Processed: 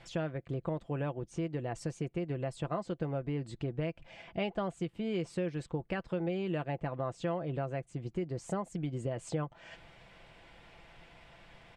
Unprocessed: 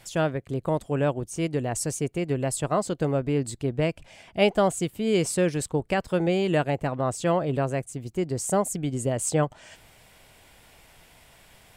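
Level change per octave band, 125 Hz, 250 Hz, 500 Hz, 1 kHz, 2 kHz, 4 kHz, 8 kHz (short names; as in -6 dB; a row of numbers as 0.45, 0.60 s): -8.0, -9.5, -11.5, -11.5, -11.0, -13.0, -22.0 dB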